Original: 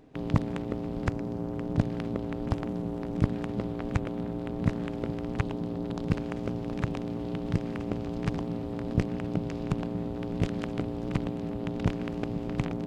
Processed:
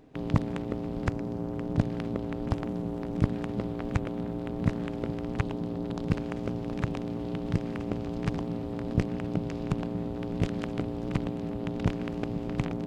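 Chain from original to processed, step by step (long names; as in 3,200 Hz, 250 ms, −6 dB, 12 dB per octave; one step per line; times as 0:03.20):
0:02.64–0:04.82: surface crackle 270 per second −60 dBFS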